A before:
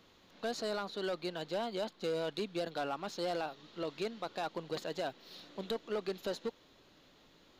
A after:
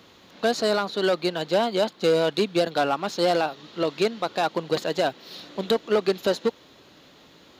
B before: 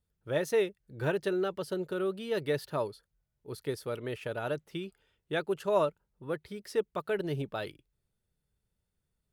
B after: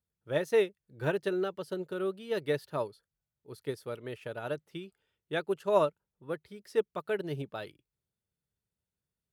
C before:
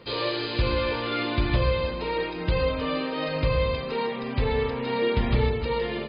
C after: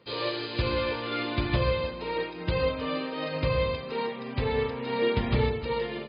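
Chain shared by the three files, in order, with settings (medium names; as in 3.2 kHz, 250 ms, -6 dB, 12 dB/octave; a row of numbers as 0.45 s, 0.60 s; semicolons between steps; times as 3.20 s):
high-pass 72 Hz; upward expansion 1.5:1, over -41 dBFS; peak normalisation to -12 dBFS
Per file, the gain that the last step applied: +15.5 dB, +2.5 dB, 0.0 dB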